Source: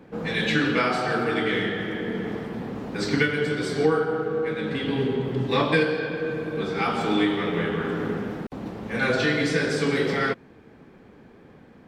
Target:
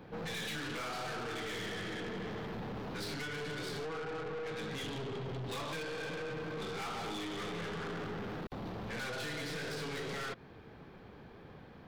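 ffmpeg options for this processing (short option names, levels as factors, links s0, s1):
-af "acompressor=threshold=0.0562:ratio=6,equalizer=f=250:t=o:w=1:g=-8,equalizer=f=500:t=o:w=1:g=-3,equalizer=f=2000:t=o:w=1:g=-4,equalizer=f=4000:t=o:w=1:g=4,equalizer=f=8000:t=o:w=1:g=-11,aeval=exprs='(tanh(100*val(0)+0.25)-tanh(0.25))/100':c=same,volume=1.26"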